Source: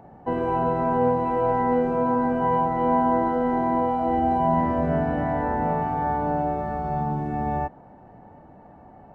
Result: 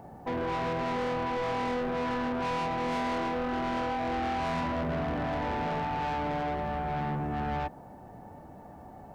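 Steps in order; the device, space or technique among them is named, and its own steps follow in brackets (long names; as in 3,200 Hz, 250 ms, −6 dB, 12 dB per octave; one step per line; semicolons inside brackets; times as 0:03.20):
open-reel tape (soft clipping −29 dBFS, distortion −7 dB; parametric band 77 Hz +2.5 dB; white noise bed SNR 44 dB)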